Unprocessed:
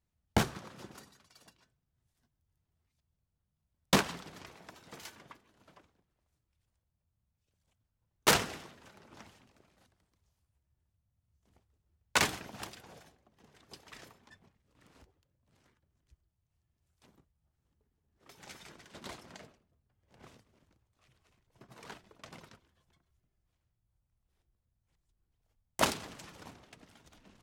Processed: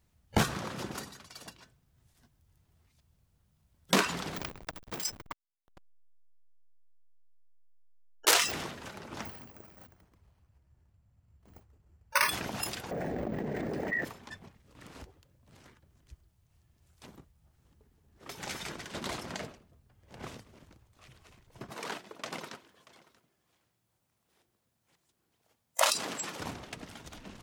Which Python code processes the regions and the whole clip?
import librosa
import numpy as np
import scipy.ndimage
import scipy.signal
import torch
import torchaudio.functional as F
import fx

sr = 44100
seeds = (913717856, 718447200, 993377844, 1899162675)

y = fx.chain(x, sr, fx.high_shelf(hz=3300.0, db=7.5),
    fx.backlash(play_db=-41.5), at=(4.36, 8.52))
y = fx.chain(y, sr, fx.high_shelf(hz=3900.0, db=-9.0),
    fx.resample_bad(factor=6, down='filtered', up='hold'), at=(9.25, 12.29))
y = fx.chain(y, sr, fx.curve_eq(hz=(100.0, 190.0, 620.0, 1200.0, 1900.0, 3200.0), db=(0, 10, 9, -8, 3, -16)),
    fx.leveller(passes=2),
    fx.env_flatten(amount_pct=100), at=(12.91, 14.05))
y = fx.chain(y, sr, fx.highpass(hz=230.0, slope=12),
    fx.echo_single(ms=633, db=-21.0), at=(21.7, 26.4))
y = fx.noise_reduce_blind(y, sr, reduce_db=24)
y = fx.env_flatten(y, sr, amount_pct=70)
y = F.gain(torch.from_numpy(y), -3.5).numpy()